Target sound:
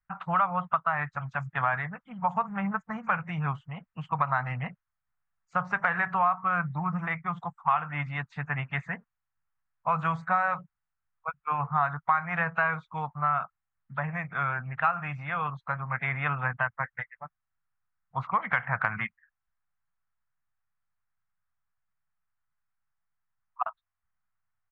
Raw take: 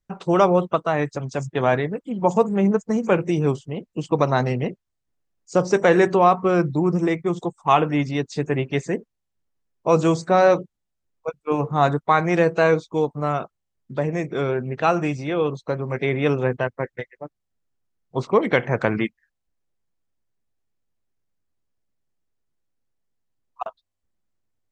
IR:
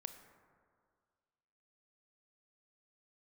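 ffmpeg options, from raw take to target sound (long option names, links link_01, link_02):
-af "firequalizer=gain_entry='entry(160,0);entry(350,-27);entry(720,3);entry(1300,14);entry(5100,-23)':delay=0.05:min_phase=1,acompressor=threshold=-16dB:ratio=4,volume=-6.5dB"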